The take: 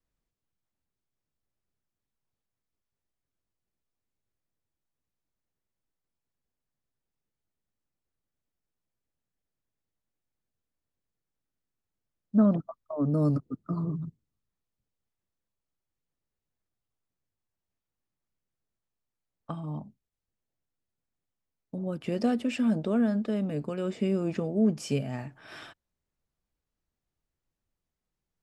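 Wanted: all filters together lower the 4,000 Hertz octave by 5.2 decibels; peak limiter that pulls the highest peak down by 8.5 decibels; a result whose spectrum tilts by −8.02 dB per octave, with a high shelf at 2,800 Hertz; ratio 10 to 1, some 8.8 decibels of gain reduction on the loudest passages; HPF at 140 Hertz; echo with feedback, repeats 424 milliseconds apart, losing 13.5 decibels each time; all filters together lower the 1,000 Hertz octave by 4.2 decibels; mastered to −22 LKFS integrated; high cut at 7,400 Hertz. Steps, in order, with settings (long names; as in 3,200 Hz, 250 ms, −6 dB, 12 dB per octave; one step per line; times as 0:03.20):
high-pass filter 140 Hz
low-pass filter 7,400 Hz
parametric band 1,000 Hz −5.5 dB
high-shelf EQ 2,800 Hz −4 dB
parametric band 4,000 Hz −3.5 dB
downward compressor 10 to 1, threshold −27 dBFS
brickwall limiter −27.5 dBFS
repeating echo 424 ms, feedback 21%, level −13.5 dB
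level +14.5 dB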